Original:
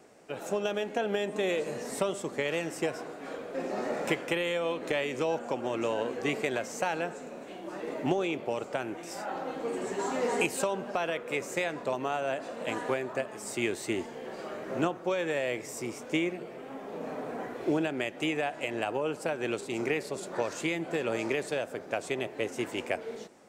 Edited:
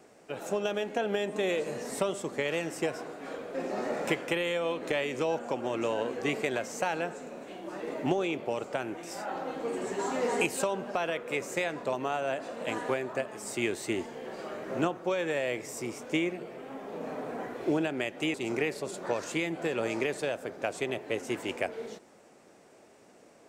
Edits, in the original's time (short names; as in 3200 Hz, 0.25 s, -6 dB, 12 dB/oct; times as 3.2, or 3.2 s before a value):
18.34–19.63 cut